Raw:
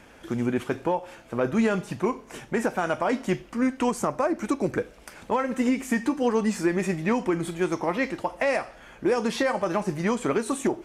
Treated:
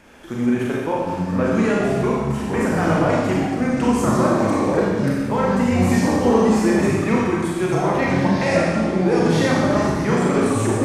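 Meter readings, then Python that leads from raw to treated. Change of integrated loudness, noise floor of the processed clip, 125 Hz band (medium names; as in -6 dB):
+7.5 dB, -26 dBFS, +13.5 dB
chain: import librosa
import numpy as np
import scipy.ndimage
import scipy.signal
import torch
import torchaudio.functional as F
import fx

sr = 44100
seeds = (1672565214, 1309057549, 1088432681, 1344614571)

y = fx.echo_pitch(x, sr, ms=649, semitones=-5, count=3, db_per_echo=-3.0)
y = fx.rev_schroeder(y, sr, rt60_s=1.4, comb_ms=29, drr_db=-4.0)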